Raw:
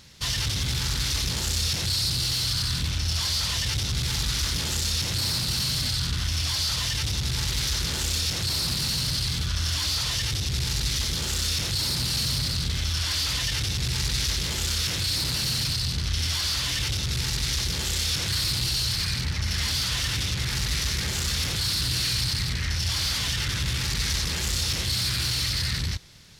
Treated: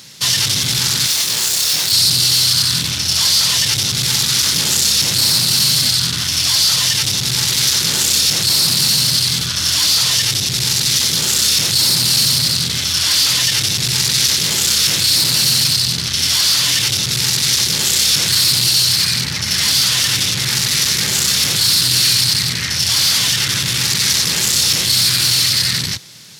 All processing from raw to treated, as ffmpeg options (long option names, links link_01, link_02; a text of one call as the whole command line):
ffmpeg -i in.wav -filter_complex "[0:a]asettb=1/sr,asplit=3[link_01][link_02][link_03];[link_01]atrim=end=1.064[link_04];[link_02]atrim=start=1.06:end=1.92,asetpts=PTS-STARTPTS,afade=type=in:duration=0.004:curve=qsin,afade=type=out:start_time=0.856:duration=0.004:curve=qsin,volume=27dB,asoftclip=hard,volume=-27dB,lowshelf=frequency=480:gain=-10.5,asplit=2[link_05][link_06];[link_06]adelay=27,volume=-2.5dB[link_07];[link_05][link_07]amix=inputs=2:normalize=0,atrim=end_sample=37926[link_08];[link_03]atrim=start=1.916[link_09];[link_04][link_08]acrossfade=duration=0.004:curve1=hsin:curve2=qsin[link_10];[link_10][link_09]acrossfade=duration=0.004:curve1=qsin:curve2=hsin,highpass=frequency=120:width=0.5412,highpass=frequency=120:width=1.3066,acontrast=76,highshelf=frequency=4100:gain=9,volume=1.5dB" out.wav